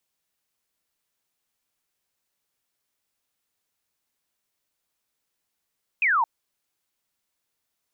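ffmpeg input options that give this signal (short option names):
-f lavfi -i "aevalsrc='0.126*clip(t/0.002,0,1)*clip((0.22-t)/0.002,0,1)*sin(2*PI*2600*0.22/log(860/2600)*(exp(log(860/2600)*t/0.22)-1))':d=0.22:s=44100"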